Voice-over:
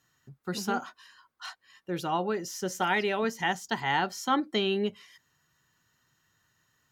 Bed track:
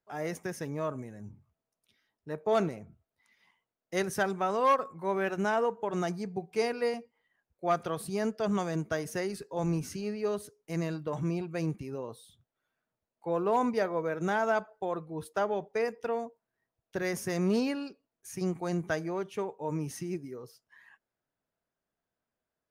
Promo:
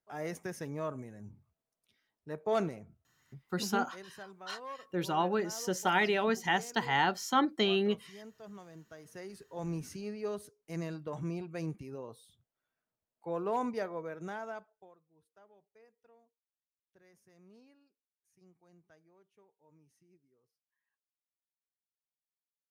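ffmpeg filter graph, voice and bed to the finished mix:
-filter_complex "[0:a]adelay=3050,volume=-1dB[a];[1:a]volume=10.5dB,afade=t=out:st=2.79:d=0.91:silence=0.158489,afade=t=in:st=8.96:d=0.9:silence=0.199526,afade=t=out:st=13.6:d=1.37:silence=0.0473151[b];[a][b]amix=inputs=2:normalize=0"

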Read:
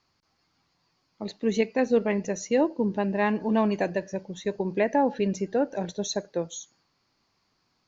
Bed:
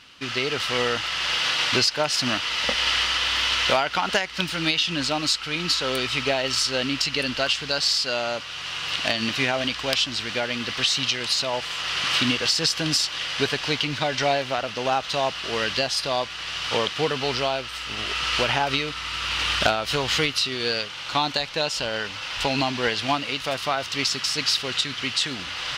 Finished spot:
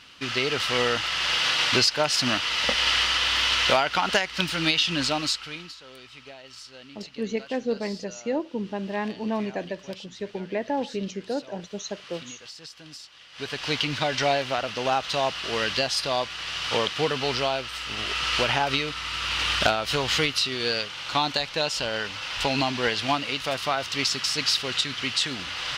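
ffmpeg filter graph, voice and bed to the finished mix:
-filter_complex "[0:a]adelay=5750,volume=-4.5dB[a];[1:a]volume=20dB,afade=t=out:st=5.06:d=0.66:silence=0.0891251,afade=t=in:st=13.32:d=0.46:silence=0.1[b];[a][b]amix=inputs=2:normalize=0"

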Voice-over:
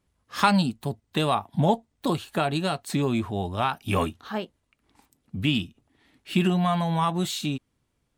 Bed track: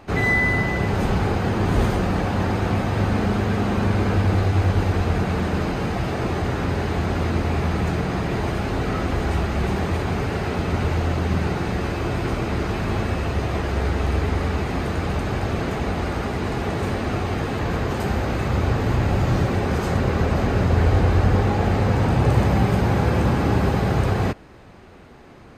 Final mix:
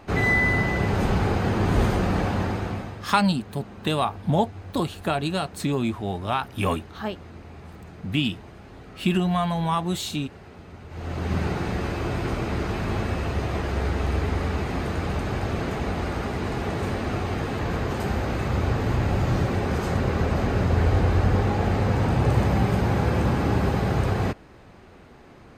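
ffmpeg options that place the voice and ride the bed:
-filter_complex "[0:a]adelay=2700,volume=0dB[a];[1:a]volume=16dB,afade=t=out:st=2.24:d=0.8:silence=0.112202,afade=t=in:st=10.89:d=0.48:silence=0.133352[b];[a][b]amix=inputs=2:normalize=0"

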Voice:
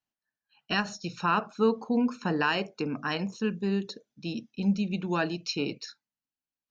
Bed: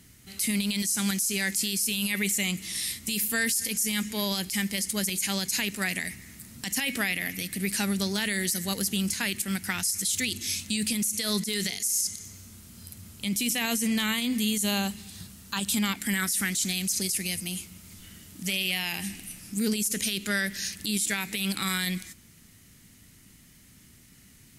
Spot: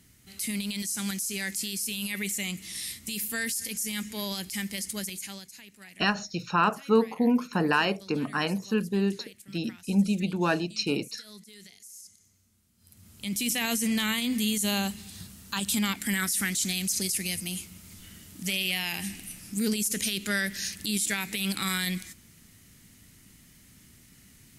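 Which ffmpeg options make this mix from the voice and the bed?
-filter_complex "[0:a]adelay=5300,volume=2.5dB[a];[1:a]volume=15.5dB,afade=t=out:st=4.91:d=0.61:silence=0.158489,afade=t=in:st=12.78:d=0.73:silence=0.1[b];[a][b]amix=inputs=2:normalize=0"

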